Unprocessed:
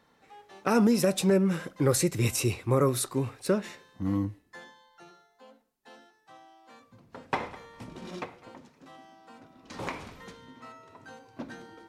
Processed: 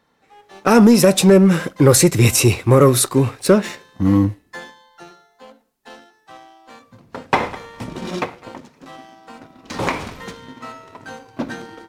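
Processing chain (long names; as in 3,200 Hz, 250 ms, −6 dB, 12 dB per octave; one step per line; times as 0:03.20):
automatic gain control gain up to 7.5 dB
leveller curve on the samples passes 1
level +3 dB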